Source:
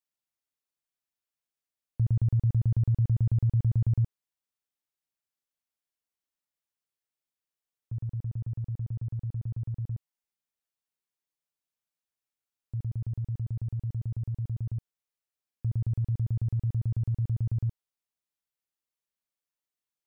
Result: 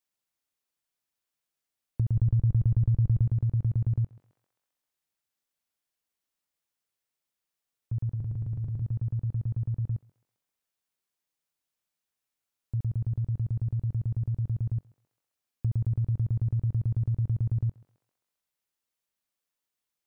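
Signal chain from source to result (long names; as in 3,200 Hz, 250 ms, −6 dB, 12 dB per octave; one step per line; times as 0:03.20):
0:08.11–0:08.82: mains-hum notches 60/120/180/240/300/360/420/480 Hz
feedback echo with a high-pass in the loop 132 ms, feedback 70%, high-pass 570 Hz, level −15 dB
downward compressor 4 to 1, threshold −28 dBFS, peak gain reduction 5.5 dB
0:02.15–0:03.26: low-shelf EQ 64 Hz +10.5 dB
level +4 dB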